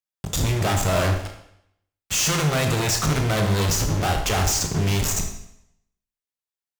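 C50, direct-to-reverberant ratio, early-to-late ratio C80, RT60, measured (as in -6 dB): 6.5 dB, 3.5 dB, 10.0 dB, 0.75 s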